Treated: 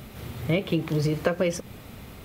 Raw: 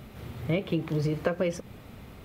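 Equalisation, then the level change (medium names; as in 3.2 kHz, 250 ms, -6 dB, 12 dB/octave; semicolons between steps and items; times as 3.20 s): treble shelf 3.7 kHz +7 dB; +3.0 dB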